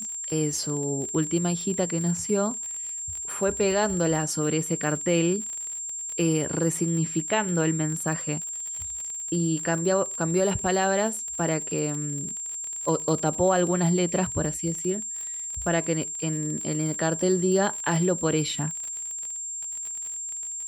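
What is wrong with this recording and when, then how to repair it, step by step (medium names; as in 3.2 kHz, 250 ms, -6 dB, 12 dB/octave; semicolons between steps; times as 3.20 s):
crackle 39 per s -31 dBFS
whine 7.4 kHz -31 dBFS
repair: de-click; band-stop 7.4 kHz, Q 30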